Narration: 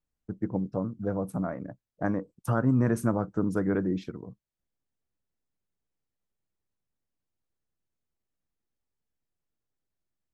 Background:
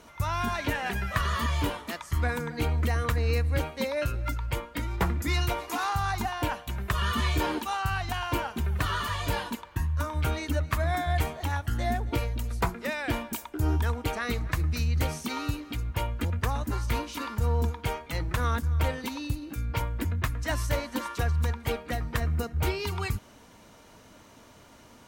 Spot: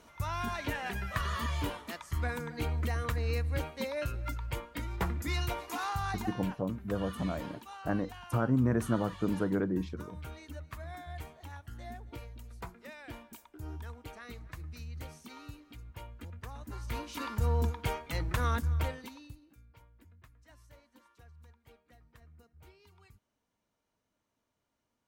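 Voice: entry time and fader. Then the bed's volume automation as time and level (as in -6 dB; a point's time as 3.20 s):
5.85 s, -3.5 dB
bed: 6.12 s -6 dB
6.65 s -16.5 dB
16.50 s -16.5 dB
17.26 s -3 dB
18.71 s -3 dB
19.74 s -30 dB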